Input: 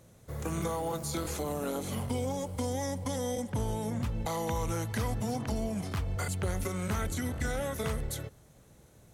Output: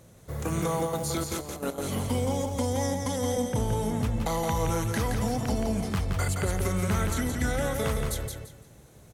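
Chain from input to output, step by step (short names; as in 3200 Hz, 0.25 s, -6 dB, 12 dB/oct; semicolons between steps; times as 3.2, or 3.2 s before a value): 0.85–1.91 step gate ".xxxx.x...x" 194 bpm -12 dB; feedback echo 0.171 s, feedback 26%, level -5 dB; gain +4 dB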